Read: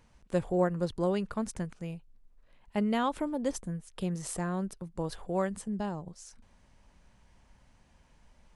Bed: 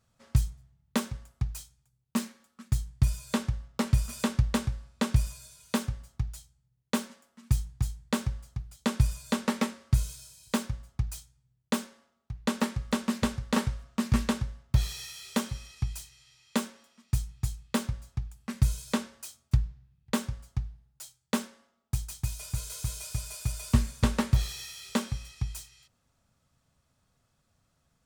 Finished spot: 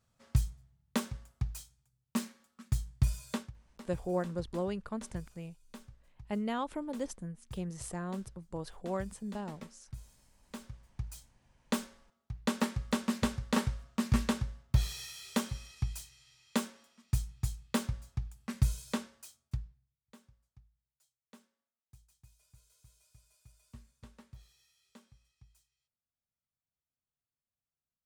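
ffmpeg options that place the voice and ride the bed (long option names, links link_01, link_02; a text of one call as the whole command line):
ffmpeg -i stem1.wav -i stem2.wav -filter_complex "[0:a]adelay=3550,volume=-5.5dB[link_01];[1:a]volume=14.5dB,afade=type=out:start_time=3.24:duration=0.28:silence=0.133352,afade=type=in:start_time=10.41:duration=1.42:silence=0.11885,afade=type=out:start_time=18.5:duration=1.49:silence=0.0501187[link_02];[link_01][link_02]amix=inputs=2:normalize=0" out.wav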